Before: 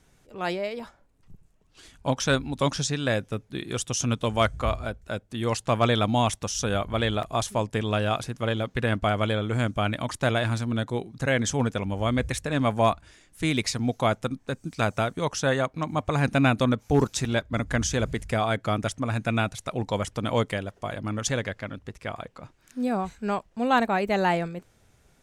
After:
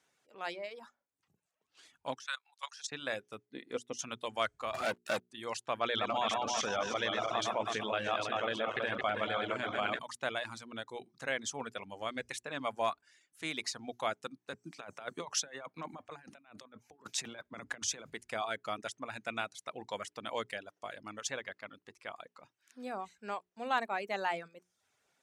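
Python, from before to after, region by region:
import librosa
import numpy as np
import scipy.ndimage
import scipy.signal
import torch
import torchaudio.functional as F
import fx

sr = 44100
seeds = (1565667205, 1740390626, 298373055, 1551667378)

y = fx.chain(x, sr, fx.highpass(hz=920.0, slope=24),
    fx.level_steps(step_db=14), at=(2.15, 2.92))
y = fx.chain(y, sr, fx.high_shelf(hz=3600.0, db=-7.5),
    fx.small_body(hz=(260.0, 470.0, 2000.0), ring_ms=30, db=12),
    fx.upward_expand(threshold_db=-33.0, expansion=1.5), at=(3.45, 3.99))
y = fx.chain(y, sr, fx.highpass(hz=120.0, slope=12),
    fx.high_shelf(hz=8800.0, db=6.5),
    fx.leveller(passes=5), at=(4.74, 5.21))
y = fx.chain(y, sr, fx.reverse_delay_fb(ms=162, feedback_pct=60, wet_db=-4),
    fx.air_absorb(metres=100.0),
    fx.env_flatten(amount_pct=70), at=(5.81, 9.99))
y = fx.chain(y, sr, fx.highpass(hz=55.0, slope=12),
    fx.over_compress(threshold_db=-29.0, ratio=-0.5),
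    fx.band_widen(depth_pct=40), at=(14.53, 18.1))
y = fx.hum_notches(y, sr, base_hz=60, count=7)
y = fx.dereverb_blind(y, sr, rt60_s=0.56)
y = fx.weighting(y, sr, curve='A')
y = y * 10.0 ** (-9.0 / 20.0)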